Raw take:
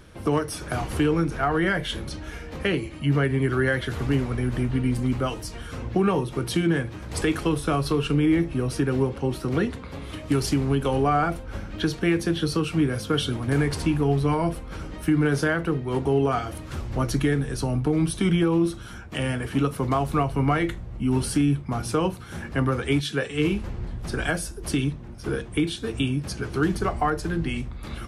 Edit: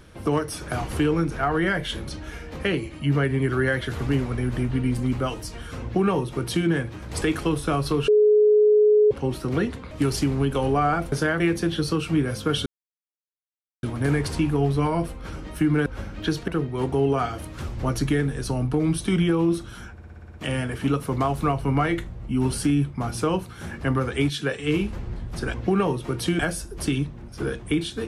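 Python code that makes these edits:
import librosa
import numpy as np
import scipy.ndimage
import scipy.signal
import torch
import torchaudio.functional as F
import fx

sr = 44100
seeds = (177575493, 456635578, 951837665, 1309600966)

y = fx.edit(x, sr, fx.duplicate(start_s=5.82, length_s=0.85, to_s=24.25),
    fx.bleep(start_s=8.08, length_s=1.03, hz=422.0, db=-13.0),
    fx.cut(start_s=9.91, length_s=0.3),
    fx.swap(start_s=11.42, length_s=0.62, other_s=15.33, other_length_s=0.28),
    fx.insert_silence(at_s=13.3, length_s=1.17),
    fx.stutter(start_s=19.05, slice_s=0.06, count=8), tone=tone)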